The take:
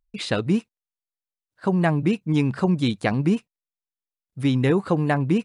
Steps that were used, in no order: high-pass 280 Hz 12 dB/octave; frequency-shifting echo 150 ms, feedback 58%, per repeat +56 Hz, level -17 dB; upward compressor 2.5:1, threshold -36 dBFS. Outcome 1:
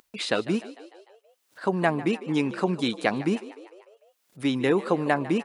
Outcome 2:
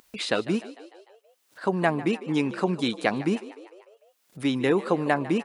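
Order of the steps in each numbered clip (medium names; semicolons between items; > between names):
upward compressor > high-pass > frequency-shifting echo; high-pass > upward compressor > frequency-shifting echo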